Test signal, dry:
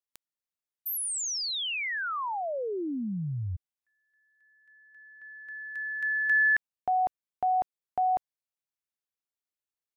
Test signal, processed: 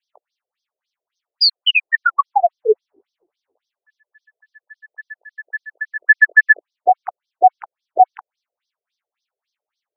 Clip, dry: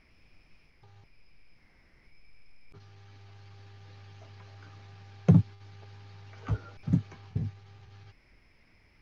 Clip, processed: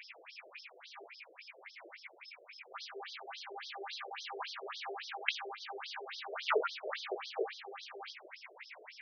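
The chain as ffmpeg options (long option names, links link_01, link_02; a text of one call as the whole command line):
ffmpeg -i in.wav -af "flanger=delay=17.5:depth=3.3:speed=0.54,apsyclip=26dB,afftfilt=real='re*between(b*sr/1024,480*pow(4600/480,0.5+0.5*sin(2*PI*3.6*pts/sr))/1.41,480*pow(4600/480,0.5+0.5*sin(2*PI*3.6*pts/sr))*1.41)':imag='im*between(b*sr/1024,480*pow(4600/480,0.5+0.5*sin(2*PI*3.6*pts/sr))/1.41,480*pow(4600/480,0.5+0.5*sin(2*PI*3.6*pts/sr))*1.41)':win_size=1024:overlap=0.75,volume=-2dB" out.wav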